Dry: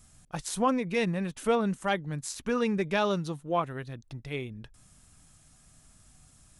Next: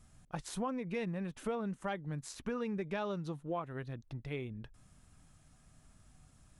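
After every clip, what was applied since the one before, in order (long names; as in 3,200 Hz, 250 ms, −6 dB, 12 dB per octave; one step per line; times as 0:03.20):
high-shelf EQ 3,600 Hz −10.5 dB
downward compressor 4 to 1, threshold −33 dBFS, peak gain reduction 10.5 dB
level −2 dB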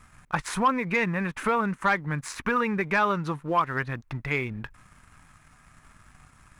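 flat-topped bell 1,500 Hz +12 dB
leveller curve on the samples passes 1
level +5.5 dB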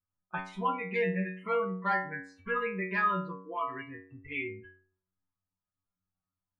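noise reduction from a noise print of the clip's start 29 dB
low-pass that shuts in the quiet parts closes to 840 Hz, open at −20 dBFS
stiff-string resonator 92 Hz, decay 0.59 s, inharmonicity 0.002
level +6 dB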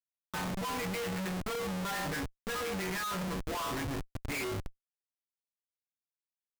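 comparator with hysteresis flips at −43.5 dBFS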